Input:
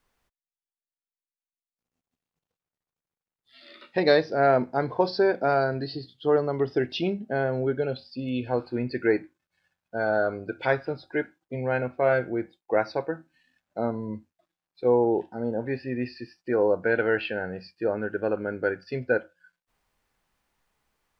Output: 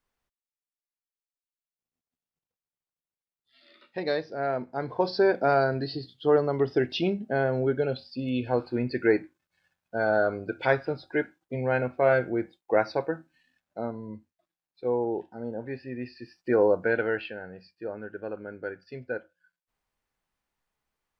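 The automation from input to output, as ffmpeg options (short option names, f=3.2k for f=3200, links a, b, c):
-af "volume=8.5dB,afade=t=in:st=4.66:d=0.64:silence=0.354813,afade=t=out:st=13.1:d=0.83:silence=0.473151,afade=t=in:st=16.17:d=0.34:silence=0.398107,afade=t=out:st=16.51:d=0.87:silence=0.281838"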